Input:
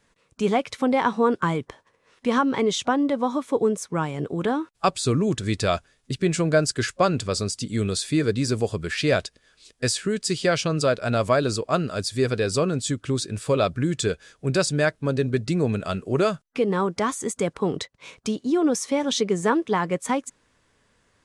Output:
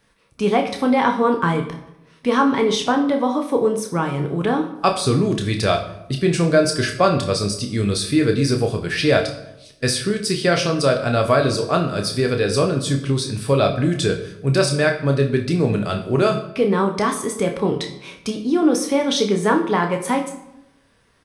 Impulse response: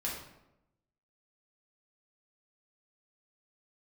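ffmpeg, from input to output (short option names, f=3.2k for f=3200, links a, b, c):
-filter_complex "[0:a]equalizer=f=7.2k:t=o:w=0.24:g=-14.5,asplit=2[a][b];[b]adelay=29,volume=-7.5dB[c];[a][c]amix=inputs=2:normalize=0,asplit=2[d][e];[1:a]atrim=start_sample=2205,highshelf=f=4.5k:g=9.5[f];[e][f]afir=irnorm=-1:irlink=0,volume=-6dB[g];[d][g]amix=inputs=2:normalize=0"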